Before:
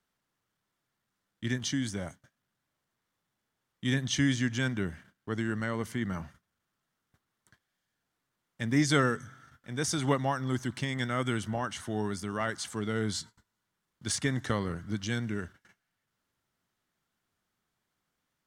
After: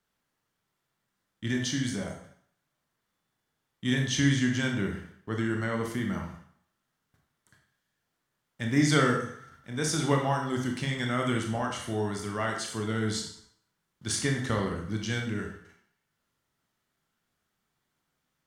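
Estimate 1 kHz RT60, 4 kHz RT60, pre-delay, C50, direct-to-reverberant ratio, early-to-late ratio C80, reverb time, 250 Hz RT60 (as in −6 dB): 0.65 s, 0.55 s, 21 ms, 5.0 dB, 1.5 dB, 8.5 dB, 0.60 s, 0.55 s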